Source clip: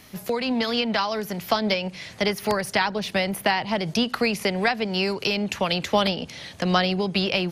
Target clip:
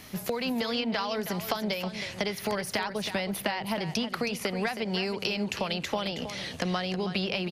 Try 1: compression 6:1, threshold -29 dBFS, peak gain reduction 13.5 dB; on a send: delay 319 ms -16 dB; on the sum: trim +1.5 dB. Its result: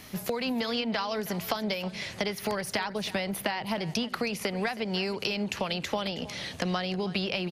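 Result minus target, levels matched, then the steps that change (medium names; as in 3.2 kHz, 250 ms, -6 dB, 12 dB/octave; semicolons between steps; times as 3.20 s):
echo-to-direct -6 dB
change: delay 319 ms -10 dB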